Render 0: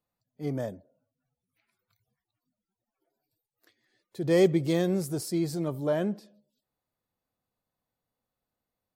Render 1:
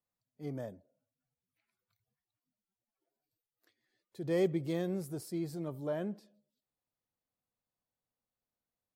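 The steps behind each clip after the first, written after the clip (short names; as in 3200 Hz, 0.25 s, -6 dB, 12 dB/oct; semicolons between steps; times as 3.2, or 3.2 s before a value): dynamic EQ 6100 Hz, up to -5 dB, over -51 dBFS, Q 0.76; gain -8.5 dB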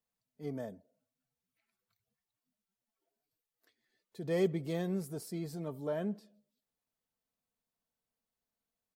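comb 4.5 ms, depth 41%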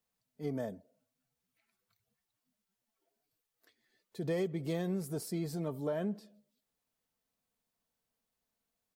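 compressor 12:1, threshold -34 dBFS, peak gain reduction 10.5 dB; gain +4 dB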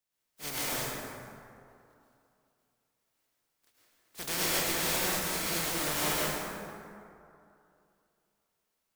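spectral contrast lowered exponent 0.19; plate-style reverb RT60 2.6 s, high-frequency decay 0.45×, pre-delay 95 ms, DRR -8 dB; gain -2 dB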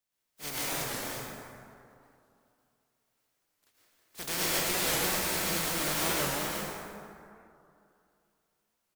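on a send: echo 0.347 s -5.5 dB; on the sum: record warp 45 rpm, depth 160 cents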